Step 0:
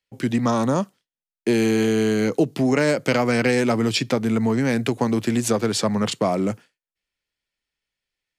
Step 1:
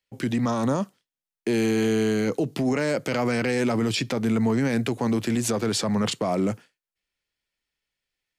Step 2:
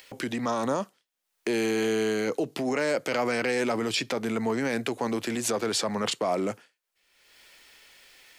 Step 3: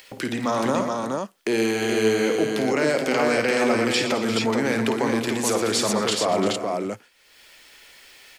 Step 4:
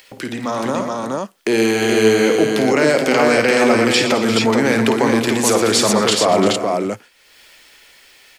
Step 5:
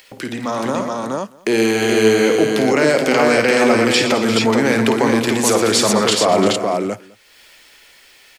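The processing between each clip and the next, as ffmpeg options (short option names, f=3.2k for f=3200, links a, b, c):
-af "alimiter=limit=-16dB:level=0:latency=1:release=19"
-af "acompressor=mode=upward:threshold=-29dB:ratio=2.5,bass=f=250:g=-13,treble=f=4k:g=-1"
-af "aecho=1:1:53|119|208|232|346|426:0.376|0.266|0.112|0.141|0.237|0.668,volume=3.5dB"
-af "dynaudnorm=f=200:g=13:m=8dB,volume=1dB"
-af "aecho=1:1:206:0.0668"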